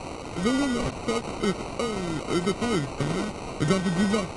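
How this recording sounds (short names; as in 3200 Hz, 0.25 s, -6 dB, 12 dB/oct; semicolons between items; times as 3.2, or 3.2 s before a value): a quantiser's noise floor 6-bit, dither triangular; phasing stages 12, 0.86 Hz, lowest notch 680–3000 Hz; aliases and images of a low sample rate 1700 Hz, jitter 0%; AAC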